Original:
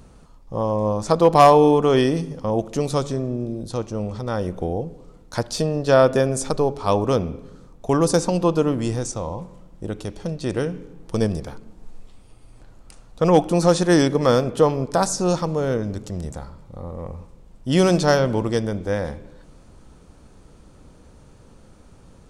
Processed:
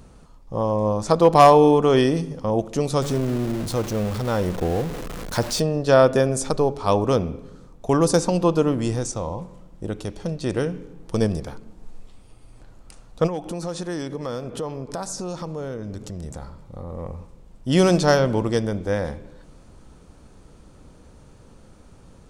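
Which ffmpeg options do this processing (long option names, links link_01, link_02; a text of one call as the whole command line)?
ffmpeg -i in.wav -filter_complex "[0:a]asettb=1/sr,asplit=3[link_01][link_02][link_03];[link_01]atrim=end=3.024[link_04];[link_02]atrim=start=3.02:end=5.6,asetpts=PTS-STARTPTS,afade=type=in:duration=0.004:curve=qsin,afade=type=out:start_time=2.576:duration=0.004:curve=qsin,aeval=exprs='val(0)+0.5*0.0422*sgn(val(0))':channel_layout=same[link_05];[link_03]atrim=start=5.596[link_06];[link_04][link_05]acrossfade=duration=0.004:curve1=hsin:curve2=qsin[link_07];[link_07][link_06]acrossfade=duration=0.004:curve1=qsin:curve2=hsin,asplit=3[link_08][link_09][link_10];[link_08]afade=type=out:start_time=13.26:duration=0.02[link_11];[link_09]acompressor=threshold=-29dB:ratio=3:attack=3.2:release=140:knee=1:detection=peak,afade=type=in:start_time=13.26:duration=0.02,afade=type=out:start_time=16.89:duration=0.02[link_12];[link_10]afade=type=in:start_time=16.89:duration=0.02[link_13];[link_11][link_12][link_13]amix=inputs=3:normalize=0" out.wav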